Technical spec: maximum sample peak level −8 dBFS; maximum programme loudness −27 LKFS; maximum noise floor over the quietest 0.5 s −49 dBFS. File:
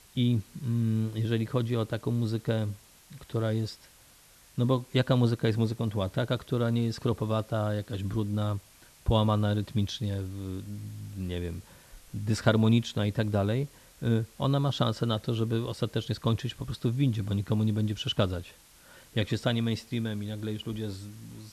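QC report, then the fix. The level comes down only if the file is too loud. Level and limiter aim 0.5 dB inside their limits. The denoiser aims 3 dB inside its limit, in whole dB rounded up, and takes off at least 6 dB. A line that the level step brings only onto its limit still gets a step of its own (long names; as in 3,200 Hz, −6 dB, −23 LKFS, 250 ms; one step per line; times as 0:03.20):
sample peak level −10.0 dBFS: in spec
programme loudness −29.5 LKFS: in spec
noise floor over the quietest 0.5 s −57 dBFS: in spec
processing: no processing needed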